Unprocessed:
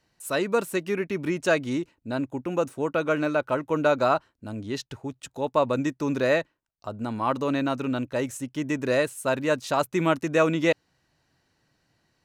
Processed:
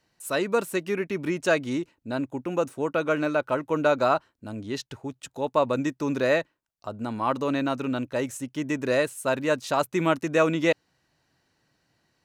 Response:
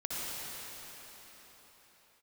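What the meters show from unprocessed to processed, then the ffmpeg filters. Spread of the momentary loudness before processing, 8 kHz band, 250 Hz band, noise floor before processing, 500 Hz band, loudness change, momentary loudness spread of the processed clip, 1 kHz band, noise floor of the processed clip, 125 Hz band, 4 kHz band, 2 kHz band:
10 LU, 0.0 dB, −0.5 dB, −74 dBFS, 0.0 dB, 0.0 dB, 10 LU, 0.0 dB, −75 dBFS, −1.5 dB, 0.0 dB, 0.0 dB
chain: -af "lowshelf=frequency=90:gain=-5.5"

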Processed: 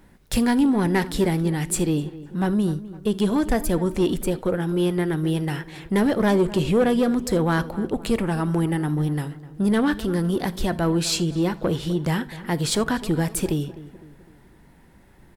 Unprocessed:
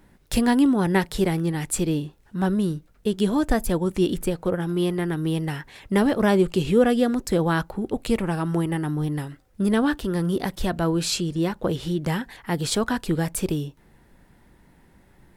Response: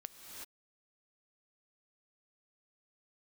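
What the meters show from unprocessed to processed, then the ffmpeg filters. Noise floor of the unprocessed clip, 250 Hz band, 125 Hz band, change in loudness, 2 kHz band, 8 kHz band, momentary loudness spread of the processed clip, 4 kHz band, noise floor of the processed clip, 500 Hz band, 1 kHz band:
−57 dBFS, +1.0 dB, +1.5 dB, +1.0 dB, +0.5 dB, +1.5 dB, 7 LU, +1.0 dB, −52 dBFS, +0.5 dB, 0.0 dB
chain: -filter_complex "[0:a]asoftclip=type=tanh:threshold=-15dB,asplit=2[link_01][link_02];[link_02]adelay=254,lowpass=frequency=1900:poles=1,volume=-16dB,asplit=2[link_03][link_04];[link_04]adelay=254,lowpass=frequency=1900:poles=1,volume=0.48,asplit=2[link_05][link_06];[link_06]adelay=254,lowpass=frequency=1900:poles=1,volume=0.48,asplit=2[link_07][link_08];[link_08]adelay=254,lowpass=frequency=1900:poles=1,volume=0.48[link_09];[link_01][link_03][link_05][link_07][link_09]amix=inputs=5:normalize=0[link_10];[1:a]atrim=start_sample=2205,atrim=end_sample=3969[link_11];[link_10][link_11]afir=irnorm=-1:irlink=0,volume=8dB"

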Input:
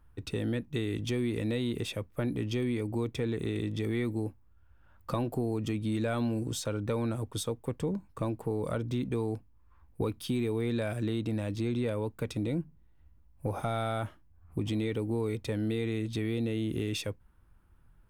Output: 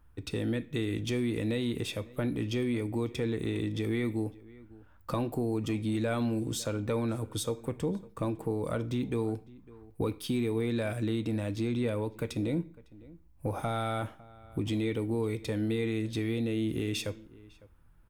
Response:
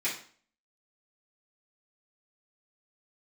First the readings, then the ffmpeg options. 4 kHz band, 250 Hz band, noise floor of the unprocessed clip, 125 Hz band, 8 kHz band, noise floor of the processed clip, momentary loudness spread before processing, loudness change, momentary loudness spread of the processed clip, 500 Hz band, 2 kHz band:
+1.0 dB, +1.0 dB, −60 dBFS, −0.5 dB, +1.0 dB, −58 dBFS, 5 LU, +0.5 dB, 6 LU, +0.5 dB, +1.0 dB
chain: -filter_complex "[0:a]asplit=2[link_01][link_02];[link_02]adelay=553.9,volume=-21dB,highshelf=frequency=4000:gain=-12.5[link_03];[link_01][link_03]amix=inputs=2:normalize=0,asplit=2[link_04][link_05];[1:a]atrim=start_sample=2205,highshelf=frequency=11000:gain=11.5[link_06];[link_05][link_06]afir=irnorm=-1:irlink=0,volume=-18dB[link_07];[link_04][link_07]amix=inputs=2:normalize=0"

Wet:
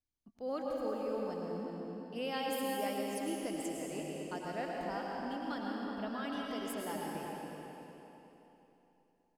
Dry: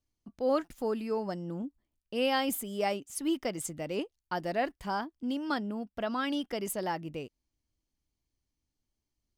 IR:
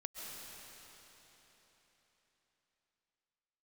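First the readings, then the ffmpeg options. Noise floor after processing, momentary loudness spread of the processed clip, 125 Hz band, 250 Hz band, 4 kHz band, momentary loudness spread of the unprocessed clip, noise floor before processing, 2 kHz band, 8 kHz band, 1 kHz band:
−75 dBFS, 9 LU, −5.5 dB, −5.0 dB, −6.5 dB, 7 LU, below −85 dBFS, −6.0 dB, −6.5 dB, −5.0 dB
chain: -filter_complex "[0:a]asplit=2[link_01][link_02];[link_02]adelay=368,lowpass=frequency=1400:poles=1,volume=-6dB,asplit=2[link_03][link_04];[link_04]adelay=368,lowpass=frequency=1400:poles=1,volume=0.42,asplit=2[link_05][link_06];[link_06]adelay=368,lowpass=frequency=1400:poles=1,volume=0.42,asplit=2[link_07][link_08];[link_08]adelay=368,lowpass=frequency=1400:poles=1,volume=0.42,asplit=2[link_09][link_10];[link_10]adelay=368,lowpass=frequency=1400:poles=1,volume=0.42[link_11];[link_01][link_03][link_05][link_07][link_09][link_11]amix=inputs=6:normalize=0[link_12];[1:a]atrim=start_sample=2205,asetrate=57330,aresample=44100[link_13];[link_12][link_13]afir=irnorm=-1:irlink=0,volume=-3dB"

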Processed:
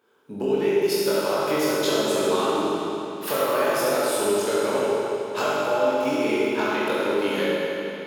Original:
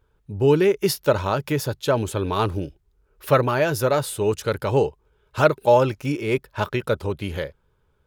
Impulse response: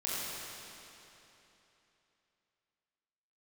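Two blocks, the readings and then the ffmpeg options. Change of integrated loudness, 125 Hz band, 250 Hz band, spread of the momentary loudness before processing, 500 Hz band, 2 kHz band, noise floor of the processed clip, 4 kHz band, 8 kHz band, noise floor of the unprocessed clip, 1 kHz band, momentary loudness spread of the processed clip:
−1.0 dB, −14.5 dB, 0.0 dB, 12 LU, −0.5 dB, +1.0 dB, −35 dBFS, +3.5 dB, +3.0 dB, −66 dBFS, −0.5 dB, 5 LU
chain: -filter_complex "[0:a]highpass=frequency=220:width=0.5412,highpass=frequency=220:width=1.3066,acompressor=threshold=-31dB:ratio=6[link_01];[1:a]atrim=start_sample=2205[link_02];[link_01][link_02]afir=irnorm=-1:irlink=0,volume=6.5dB"

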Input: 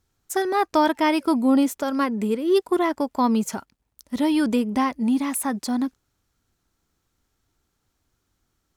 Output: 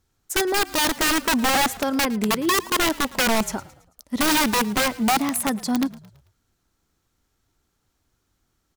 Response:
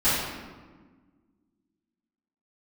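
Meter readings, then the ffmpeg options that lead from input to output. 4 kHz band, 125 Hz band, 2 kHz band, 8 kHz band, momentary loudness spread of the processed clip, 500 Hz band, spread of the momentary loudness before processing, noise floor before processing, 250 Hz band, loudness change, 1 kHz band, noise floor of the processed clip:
+11.0 dB, can't be measured, +8.5 dB, +9.5 dB, 6 LU, −2.5 dB, 7 LU, −75 dBFS, −3.0 dB, +1.0 dB, +1.0 dB, −73 dBFS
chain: -filter_complex "[0:a]aeval=exprs='(mod(6.68*val(0)+1,2)-1)/6.68':channel_layout=same,asplit=5[link_01][link_02][link_03][link_04][link_05];[link_02]adelay=110,afreqshift=-44,volume=-20dB[link_06];[link_03]adelay=220,afreqshift=-88,volume=-26.6dB[link_07];[link_04]adelay=330,afreqshift=-132,volume=-33.1dB[link_08];[link_05]adelay=440,afreqshift=-176,volume=-39.7dB[link_09];[link_01][link_06][link_07][link_08][link_09]amix=inputs=5:normalize=0,volume=1.5dB"

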